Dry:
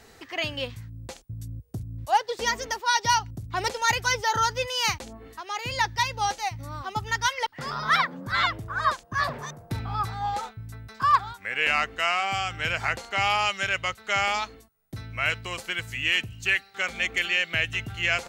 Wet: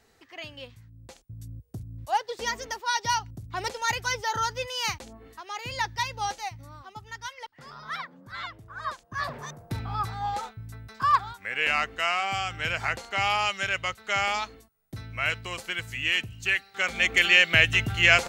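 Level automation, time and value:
0:00.81 −11 dB
0:01.47 −4 dB
0:06.39 −4 dB
0:06.95 −13 dB
0:08.55 −13 dB
0:09.53 −1.5 dB
0:16.57 −1.5 dB
0:17.33 +6.5 dB

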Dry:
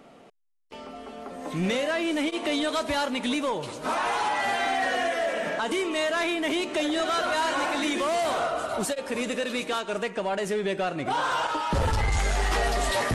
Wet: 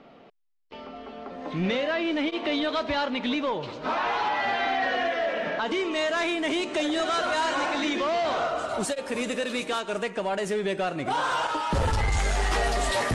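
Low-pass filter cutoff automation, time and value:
low-pass filter 24 dB per octave
0:05.54 4,700 Hz
0:06.28 8,600 Hz
0:07.40 8,600 Hz
0:08.19 5,000 Hz
0:08.95 11,000 Hz

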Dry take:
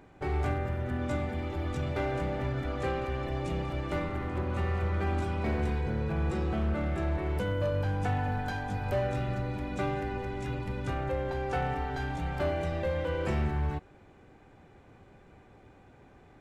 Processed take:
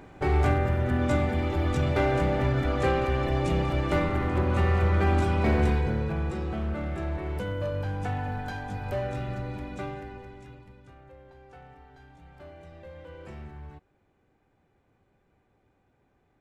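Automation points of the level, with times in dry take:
0:05.68 +7 dB
0:06.34 −1 dB
0:09.58 −1 dB
0:10.31 −9.5 dB
0:10.88 −19 dB
0:12.11 −19 dB
0:13.14 −13 dB

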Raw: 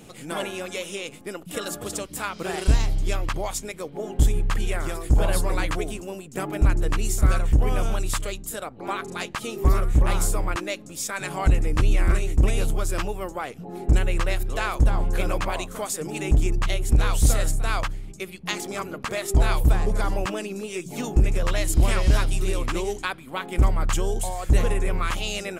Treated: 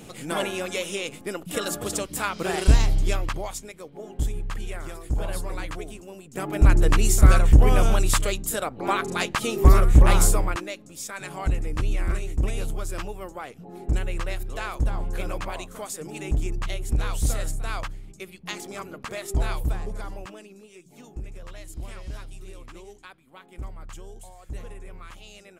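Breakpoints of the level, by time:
0:03.00 +2.5 dB
0:03.74 −7.5 dB
0:06.12 −7.5 dB
0:06.75 +5 dB
0:10.28 +5 dB
0:10.73 −5.5 dB
0:19.45 −5.5 dB
0:20.78 −17.5 dB

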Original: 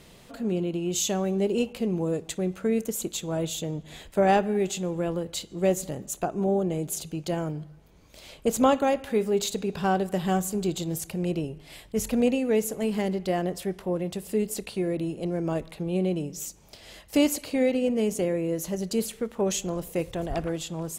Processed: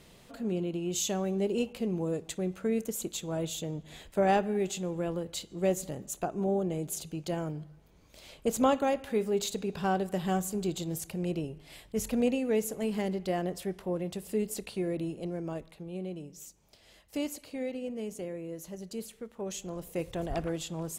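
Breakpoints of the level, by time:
0:15.06 −4.5 dB
0:15.86 −12 dB
0:19.40 −12 dB
0:20.18 −3.5 dB

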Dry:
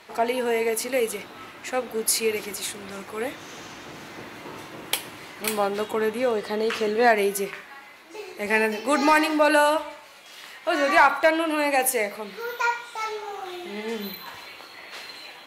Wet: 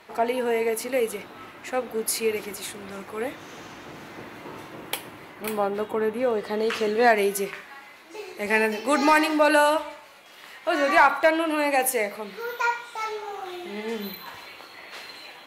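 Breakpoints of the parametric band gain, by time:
parametric band 6,200 Hz 2.4 octaves
0:04.70 −5.5 dB
0:05.38 −12.5 dB
0:06.10 −12.5 dB
0:06.73 −0.5 dB
0:09.87 −0.5 dB
0:10.38 −9 dB
0:10.54 −2.5 dB

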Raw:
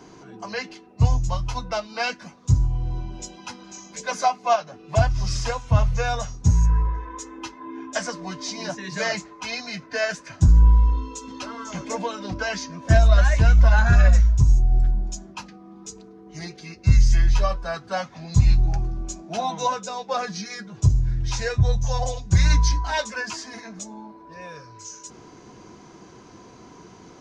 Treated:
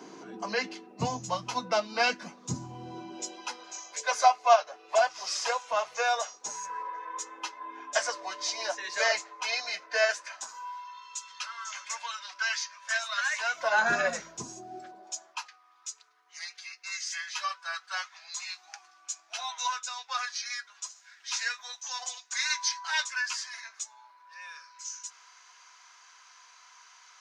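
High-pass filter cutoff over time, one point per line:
high-pass filter 24 dB per octave
0:02.86 200 Hz
0:03.84 530 Hz
0:10.01 530 Hz
0:10.88 1,200 Hz
0:13.30 1,200 Hz
0:13.85 290 Hz
0:14.69 290 Hz
0:15.61 1,200 Hz

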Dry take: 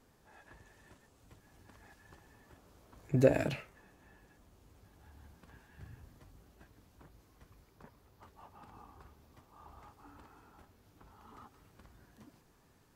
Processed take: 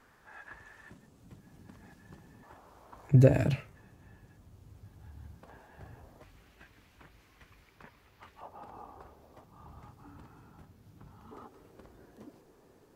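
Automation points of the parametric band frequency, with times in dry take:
parametric band +12.5 dB 1.6 octaves
1,500 Hz
from 0:00.90 180 Hz
from 0:02.43 930 Hz
from 0:03.11 110 Hz
from 0:05.43 660 Hz
from 0:06.23 2,300 Hz
from 0:08.41 600 Hz
from 0:09.44 140 Hz
from 0:11.31 430 Hz

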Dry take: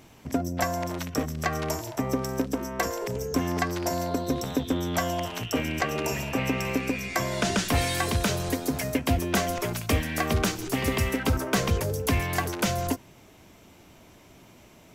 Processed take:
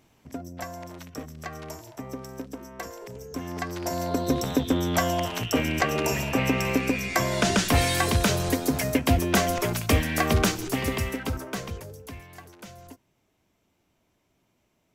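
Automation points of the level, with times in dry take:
0:03.27 −9.5 dB
0:04.27 +3 dB
0:10.46 +3 dB
0:11.47 −7 dB
0:12.27 −18.5 dB

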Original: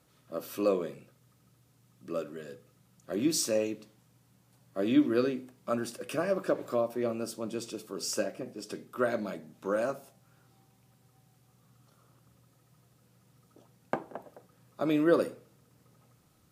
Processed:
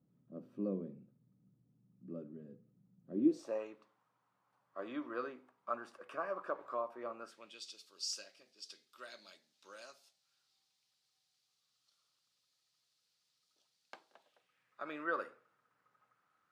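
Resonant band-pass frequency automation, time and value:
resonant band-pass, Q 2.5
0:03.11 200 Hz
0:03.60 1,100 Hz
0:07.18 1,100 Hz
0:07.65 4,400 Hz
0:14.10 4,400 Hz
0:14.93 1,400 Hz

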